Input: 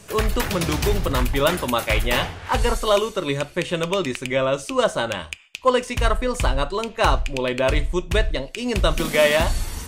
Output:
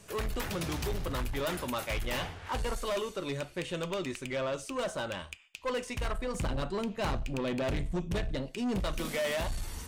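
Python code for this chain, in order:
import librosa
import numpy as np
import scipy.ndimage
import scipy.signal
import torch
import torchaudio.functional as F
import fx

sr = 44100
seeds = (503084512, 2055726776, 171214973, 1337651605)

y = fx.peak_eq(x, sr, hz=180.0, db=13.0, octaves=1.6, at=(6.34, 8.81))
y = 10.0 ** (-19.0 / 20.0) * np.tanh(y / 10.0 ** (-19.0 / 20.0))
y = F.gain(torch.from_numpy(y), -9.0).numpy()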